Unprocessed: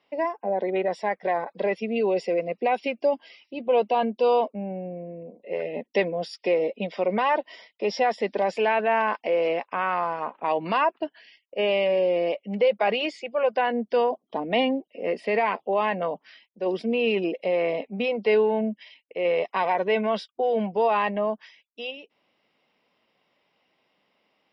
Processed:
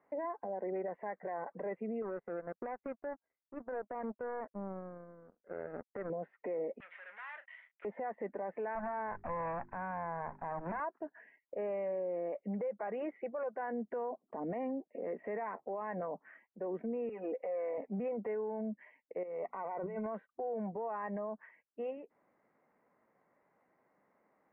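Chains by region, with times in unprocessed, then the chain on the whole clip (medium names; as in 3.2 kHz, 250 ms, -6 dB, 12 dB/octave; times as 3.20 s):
2.02–6.10 s: tilt shelf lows +3 dB, about 1.2 kHz + compression 4:1, threshold -21 dBFS + power-law waveshaper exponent 2
6.80–7.85 s: waveshaping leveller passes 5 + Butterworth band-pass 4.1 kHz, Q 1.7 + doubling 35 ms -11 dB
8.75–10.80 s: comb filter that takes the minimum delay 1.2 ms + hum notches 50/100/150/200/250/300/350/400 Hz + short-mantissa float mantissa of 2-bit
17.09–17.78 s: high-pass 390 Hz + compression 4:1, threshold -31 dBFS + comb 4 ms, depth 84%
19.23–20.06 s: compressor with a negative ratio -35 dBFS + Butterworth band-stop 1.7 kHz, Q 4.2 + hum notches 60/120/180/240 Hz
whole clip: steep low-pass 1.9 kHz 48 dB/octave; compression 4:1, threshold -30 dBFS; peak limiter -29.5 dBFS; trim -1.5 dB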